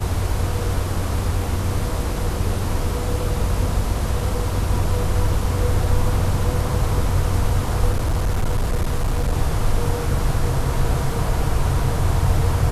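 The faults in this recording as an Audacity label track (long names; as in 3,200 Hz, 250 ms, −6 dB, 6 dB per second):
7.910000	9.330000	clipping −15.5 dBFS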